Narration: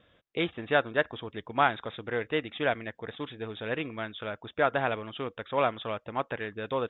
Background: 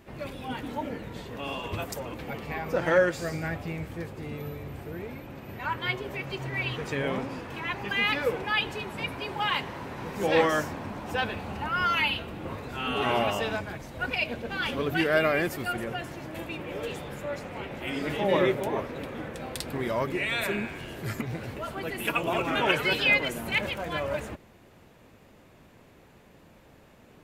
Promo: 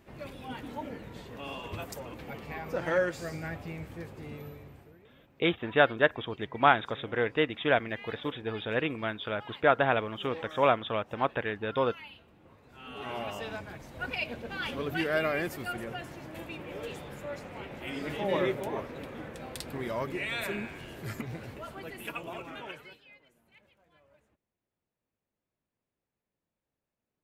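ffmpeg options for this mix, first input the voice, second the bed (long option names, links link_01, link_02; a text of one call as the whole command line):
ffmpeg -i stem1.wav -i stem2.wav -filter_complex "[0:a]adelay=5050,volume=2.5dB[link_01];[1:a]volume=11dB,afade=type=out:start_time=4.32:duration=0.67:silence=0.158489,afade=type=in:start_time=12.6:duration=1.41:silence=0.149624,afade=type=out:start_time=21.27:duration=1.74:silence=0.0334965[link_02];[link_01][link_02]amix=inputs=2:normalize=0" out.wav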